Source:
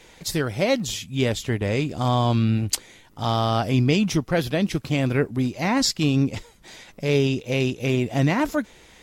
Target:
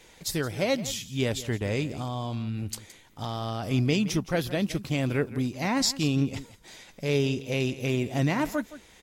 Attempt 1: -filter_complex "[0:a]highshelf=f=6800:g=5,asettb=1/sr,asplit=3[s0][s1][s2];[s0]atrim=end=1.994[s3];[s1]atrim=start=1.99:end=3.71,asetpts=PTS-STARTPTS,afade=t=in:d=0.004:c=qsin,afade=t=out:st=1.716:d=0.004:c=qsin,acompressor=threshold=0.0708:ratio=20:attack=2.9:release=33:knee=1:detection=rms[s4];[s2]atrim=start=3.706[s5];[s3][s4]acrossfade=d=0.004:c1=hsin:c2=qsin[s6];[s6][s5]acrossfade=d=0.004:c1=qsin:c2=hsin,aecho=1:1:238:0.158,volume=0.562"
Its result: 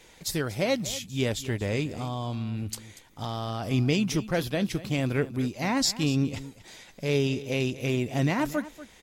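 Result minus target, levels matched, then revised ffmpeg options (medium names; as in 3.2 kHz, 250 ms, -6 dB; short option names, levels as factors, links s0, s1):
echo 70 ms late
-filter_complex "[0:a]highshelf=f=6800:g=5,asettb=1/sr,asplit=3[s0][s1][s2];[s0]atrim=end=1.994[s3];[s1]atrim=start=1.99:end=3.71,asetpts=PTS-STARTPTS,afade=t=in:d=0.004:c=qsin,afade=t=out:st=1.716:d=0.004:c=qsin,acompressor=threshold=0.0708:ratio=20:attack=2.9:release=33:knee=1:detection=rms[s4];[s2]atrim=start=3.706[s5];[s3][s4]acrossfade=d=0.004:c1=hsin:c2=qsin[s6];[s6][s5]acrossfade=d=0.004:c1=qsin:c2=hsin,aecho=1:1:168:0.158,volume=0.562"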